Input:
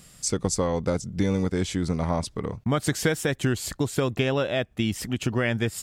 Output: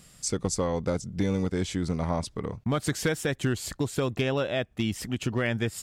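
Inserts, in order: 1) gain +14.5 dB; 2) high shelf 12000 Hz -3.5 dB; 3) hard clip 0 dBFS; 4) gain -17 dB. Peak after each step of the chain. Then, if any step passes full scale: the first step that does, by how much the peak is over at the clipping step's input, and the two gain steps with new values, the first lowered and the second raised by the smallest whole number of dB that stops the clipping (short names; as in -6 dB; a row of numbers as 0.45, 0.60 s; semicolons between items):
+5.5, +5.5, 0.0, -17.0 dBFS; step 1, 5.5 dB; step 1 +8.5 dB, step 4 -11 dB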